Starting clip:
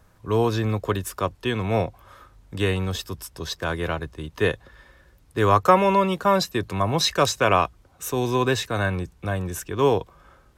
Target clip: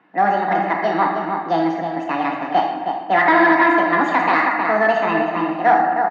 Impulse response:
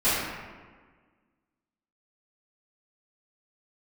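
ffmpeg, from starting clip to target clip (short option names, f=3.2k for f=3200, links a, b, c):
-filter_complex "[0:a]asetrate=76440,aresample=44100,aecho=1:1:1.1:0.32,asplit=2[a][b];[b]adelay=314.9,volume=-7dB,highshelf=f=4k:g=-7.08[c];[a][c]amix=inputs=2:normalize=0,asplit=2[d][e];[1:a]atrim=start_sample=2205,highshelf=f=3.6k:g=10.5[f];[e][f]afir=irnorm=-1:irlink=0,volume=-17dB[g];[d][g]amix=inputs=2:normalize=0,volume=12dB,asoftclip=hard,volume=-12dB,highpass=f=230:w=0.5412,highpass=f=230:w=1.3066,equalizer=f=320:t=q:w=4:g=8,equalizer=f=720:t=q:w=4:g=6,equalizer=f=1.4k:t=q:w=4:g=7,equalizer=f=2.8k:t=q:w=4:g=-8,lowpass=f=3k:w=0.5412,lowpass=f=3k:w=1.3066"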